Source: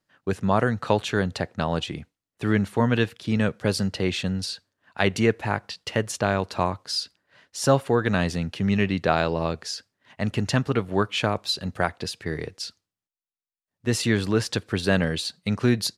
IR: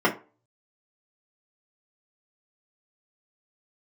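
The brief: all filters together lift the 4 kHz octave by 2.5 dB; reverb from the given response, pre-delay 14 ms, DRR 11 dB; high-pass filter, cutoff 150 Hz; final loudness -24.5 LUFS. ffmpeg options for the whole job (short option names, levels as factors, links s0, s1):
-filter_complex "[0:a]highpass=150,equalizer=f=4000:t=o:g=3,asplit=2[s0][s1];[1:a]atrim=start_sample=2205,adelay=14[s2];[s1][s2]afir=irnorm=-1:irlink=0,volume=0.0398[s3];[s0][s3]amix=inputs=2:normalize=0,volume=1.06"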